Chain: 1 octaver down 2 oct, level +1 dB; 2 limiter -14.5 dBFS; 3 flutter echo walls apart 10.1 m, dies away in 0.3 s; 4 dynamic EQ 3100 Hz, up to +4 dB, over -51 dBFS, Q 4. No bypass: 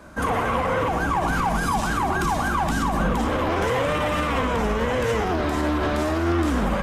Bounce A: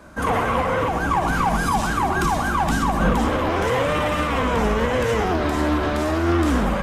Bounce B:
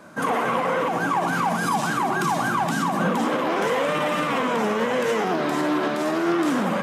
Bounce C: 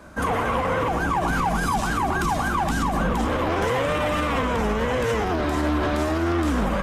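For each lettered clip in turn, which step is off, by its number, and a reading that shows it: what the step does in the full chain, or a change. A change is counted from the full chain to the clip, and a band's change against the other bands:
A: 2, mean gain reduction 2.0 dB; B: 1, 125 Hz band -6.5 dB; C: 3, crest factor change -1.5 dB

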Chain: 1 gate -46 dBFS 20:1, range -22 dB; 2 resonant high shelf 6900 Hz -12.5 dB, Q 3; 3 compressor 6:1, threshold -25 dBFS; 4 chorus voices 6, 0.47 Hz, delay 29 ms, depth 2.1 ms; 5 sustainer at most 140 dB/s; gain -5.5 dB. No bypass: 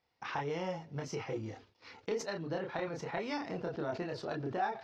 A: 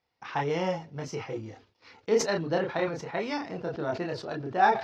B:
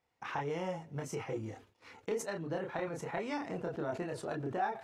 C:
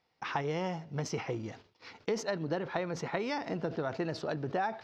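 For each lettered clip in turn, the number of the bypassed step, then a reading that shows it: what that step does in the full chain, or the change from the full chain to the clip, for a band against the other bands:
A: 3, mean gain reduction 5.0 dB; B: 2, 4 kHz band -4.0 dB; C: 4, loudness change +3.0 LU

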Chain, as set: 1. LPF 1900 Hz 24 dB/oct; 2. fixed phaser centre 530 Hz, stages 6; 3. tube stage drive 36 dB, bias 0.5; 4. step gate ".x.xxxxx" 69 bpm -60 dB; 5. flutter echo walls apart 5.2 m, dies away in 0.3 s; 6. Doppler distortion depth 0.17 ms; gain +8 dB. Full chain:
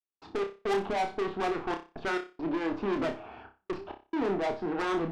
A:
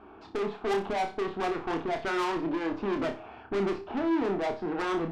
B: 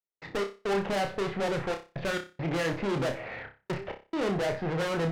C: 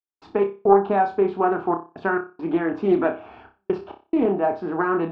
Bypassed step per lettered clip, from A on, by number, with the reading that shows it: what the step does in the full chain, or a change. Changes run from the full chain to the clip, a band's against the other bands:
4, loudness change +1.5 LU; 2, 125 Hz band +8.5 dB; 3, crest factor change +9.5 dB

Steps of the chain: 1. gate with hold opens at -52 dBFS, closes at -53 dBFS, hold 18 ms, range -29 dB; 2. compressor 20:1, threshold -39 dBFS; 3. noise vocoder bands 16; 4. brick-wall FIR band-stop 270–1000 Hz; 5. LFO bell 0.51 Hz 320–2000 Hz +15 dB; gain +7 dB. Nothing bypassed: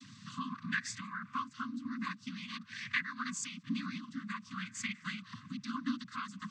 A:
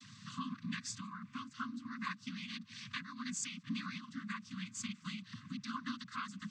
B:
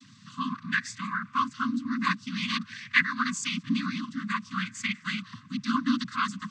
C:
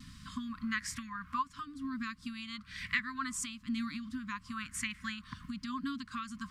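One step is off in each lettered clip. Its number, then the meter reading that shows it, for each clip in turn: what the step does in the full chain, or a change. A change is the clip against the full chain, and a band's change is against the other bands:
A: 5, 2 kHz band -6.0 dB; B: 2, mean gain reduction 8.0 dB; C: 3, 125 Hz band -4.5 dB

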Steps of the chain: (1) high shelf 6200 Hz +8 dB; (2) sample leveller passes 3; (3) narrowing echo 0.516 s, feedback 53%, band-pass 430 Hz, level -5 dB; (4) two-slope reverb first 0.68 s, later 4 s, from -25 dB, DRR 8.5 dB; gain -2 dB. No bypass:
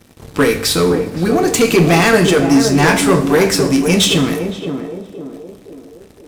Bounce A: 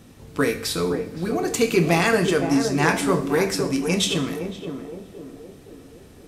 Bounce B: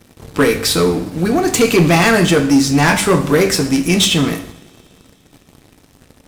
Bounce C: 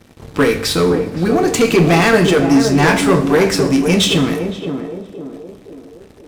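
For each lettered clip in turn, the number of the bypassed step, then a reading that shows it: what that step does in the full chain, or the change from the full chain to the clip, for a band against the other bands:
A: 2, crest factor change +5.5 dB; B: 3, momentary loudness spread change -9 LU; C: 1, 8 kHz band -4.0 dB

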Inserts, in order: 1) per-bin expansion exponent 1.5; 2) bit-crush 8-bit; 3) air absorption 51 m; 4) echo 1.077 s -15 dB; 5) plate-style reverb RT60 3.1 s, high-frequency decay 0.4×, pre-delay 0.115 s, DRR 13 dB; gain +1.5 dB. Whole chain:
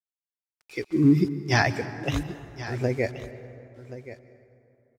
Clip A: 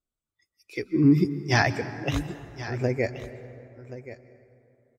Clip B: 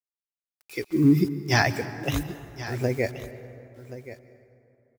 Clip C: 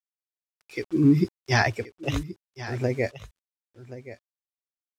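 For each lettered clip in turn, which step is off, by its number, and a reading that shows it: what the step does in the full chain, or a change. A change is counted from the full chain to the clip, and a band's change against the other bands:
2, distortion -28 dB; 3, 4 kHz band +2.0 dB; 5, echo-to-direct -11.0 dB to -15.0 dB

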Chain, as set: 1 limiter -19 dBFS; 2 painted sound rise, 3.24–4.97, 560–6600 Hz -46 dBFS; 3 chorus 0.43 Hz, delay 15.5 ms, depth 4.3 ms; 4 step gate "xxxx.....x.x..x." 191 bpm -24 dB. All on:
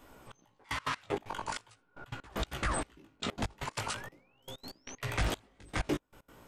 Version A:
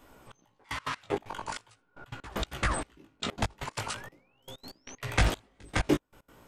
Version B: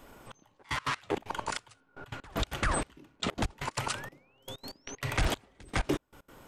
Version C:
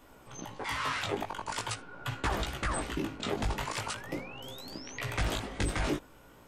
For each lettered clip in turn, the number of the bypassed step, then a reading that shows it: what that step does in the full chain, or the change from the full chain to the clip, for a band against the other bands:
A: 1, crest factor change +3.0 dB; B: 3, crest factor change -2.0 dB; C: 4, crest factor change -3.0 dB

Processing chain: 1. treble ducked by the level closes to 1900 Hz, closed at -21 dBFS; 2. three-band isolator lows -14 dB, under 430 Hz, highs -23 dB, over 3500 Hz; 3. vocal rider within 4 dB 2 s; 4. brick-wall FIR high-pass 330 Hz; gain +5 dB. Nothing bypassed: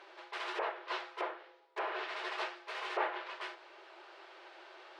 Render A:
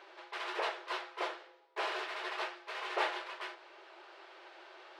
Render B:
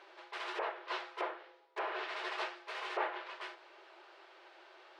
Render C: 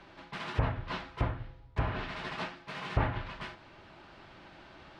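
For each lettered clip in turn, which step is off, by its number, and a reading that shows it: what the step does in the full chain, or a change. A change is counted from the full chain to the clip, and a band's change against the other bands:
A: 1, 8 kHz band +4.0 dB; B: 3, loudness change -1.0 LU; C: 4, 250 Hz band +11.0 dB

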